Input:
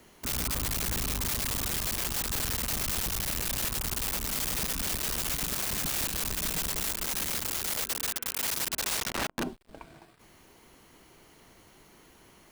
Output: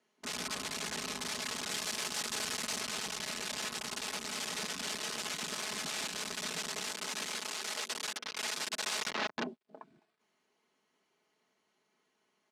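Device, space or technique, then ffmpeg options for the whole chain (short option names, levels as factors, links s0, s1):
over-cleaned archive recording: -filter_complex "[0:a]asettb=1/sr,asplit=3[s0][s1][s2];[s0]atrim=end=7.264[s3];[s1]atrim=start=7.26:end=7.89,asetpts=PTS-STARTPTS,afade=t=in:d=0.004:c=qsin,afade=t=out:st=0.626:d=0.004:c=qsin,highpass=f=180:p=1[s4];[s2]atrim=start=7.886[s5];[s3][s4]acrossfade=d=0.004:c1=hsin:c2=qsin[s6];[s6][s5]acrossfade=d=0.004:c1=qsin:c2=hsin,highpass=180,lowpass=6900,afwtdn=0.00562,asettb=1/sr,asplit=3[s7][s8][s9];[s7]atrim=end=1.694[s10];[s8]atrim=start=1.69:end=2.81,asetpts=PTS-STARTPTS,afade=t=in:d=0.004:c=qsin,afade=t=out:st=1.116:d=0.004:c=qsin,highshelf=f=5300:g=4.5[s11];[s9]atrim=start=2.806[s12];[s10][s11]acrossfade=d=0.004:c1=hsin:c2=qsin[s13];[s13][s12]acrossfade=d=0.004:c1=qsin:c2=hsin,lowshelf=f=310:g=-6,aecho=1:1:4.7:0.48,volume=0.75"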